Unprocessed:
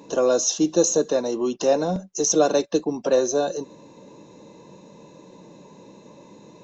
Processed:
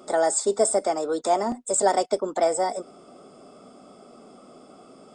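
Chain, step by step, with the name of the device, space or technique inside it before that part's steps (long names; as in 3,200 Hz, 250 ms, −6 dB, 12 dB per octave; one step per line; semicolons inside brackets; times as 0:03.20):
nightcore (speed change +29%)
level −2 dB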